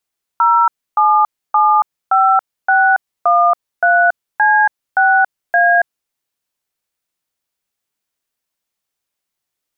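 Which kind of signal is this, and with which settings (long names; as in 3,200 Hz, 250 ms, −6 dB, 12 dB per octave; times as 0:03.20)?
touch tones "0775613C6A", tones 279 ms, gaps 292 ms, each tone −11 dBFS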